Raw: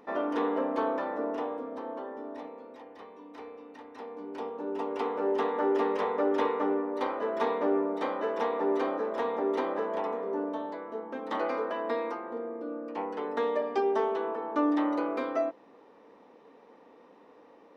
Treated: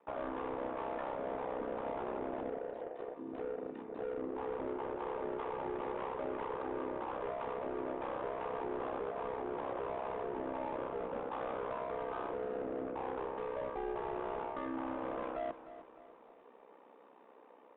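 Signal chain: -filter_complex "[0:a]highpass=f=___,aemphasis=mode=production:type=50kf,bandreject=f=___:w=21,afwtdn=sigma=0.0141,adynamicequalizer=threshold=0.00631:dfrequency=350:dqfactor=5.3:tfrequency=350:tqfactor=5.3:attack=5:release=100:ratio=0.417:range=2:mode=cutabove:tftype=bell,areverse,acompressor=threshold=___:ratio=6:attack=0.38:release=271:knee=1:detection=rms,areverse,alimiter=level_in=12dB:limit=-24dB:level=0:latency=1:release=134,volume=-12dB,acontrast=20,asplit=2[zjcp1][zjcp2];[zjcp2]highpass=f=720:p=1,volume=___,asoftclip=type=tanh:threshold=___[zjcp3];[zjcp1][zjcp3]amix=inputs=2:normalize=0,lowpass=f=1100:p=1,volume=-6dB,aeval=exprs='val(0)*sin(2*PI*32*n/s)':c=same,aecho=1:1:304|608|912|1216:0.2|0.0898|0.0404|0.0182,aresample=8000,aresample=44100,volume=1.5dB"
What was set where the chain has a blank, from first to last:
190, 1900, -37dB, 20dB, -31dB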